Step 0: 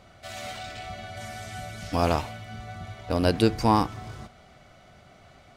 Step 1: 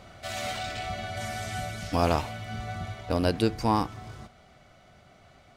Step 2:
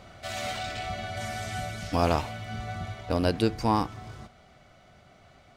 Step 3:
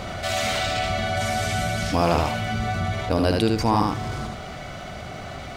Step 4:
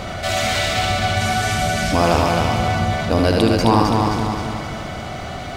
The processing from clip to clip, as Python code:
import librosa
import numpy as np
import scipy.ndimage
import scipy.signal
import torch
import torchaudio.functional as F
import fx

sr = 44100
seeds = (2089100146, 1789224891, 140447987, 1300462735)

y1 = fx.rider(x, sr, range_db=4, speed_s=0.5)
y2 = fx.peak_eq(y1, sr, hz=12000.0, db=-2.5, octaves=0.92)
y3 = y2 + 10.0 ** (-5.0 / 20.0) * np.pad(y2, (int(76 * sr / 1000.0), 0))[:len(y2)]
y3 = fx.env_flatten(y3, sr, amount_pct=50)
y3 = y3 * librosa.db_to_amplitude(2.0)
y4 = fx.echo_feedback(y3, sr, ms=262, feedback_pct=50, wet_db=-4)
y4 = y4 * librosa.db_to_amplitude(4.0)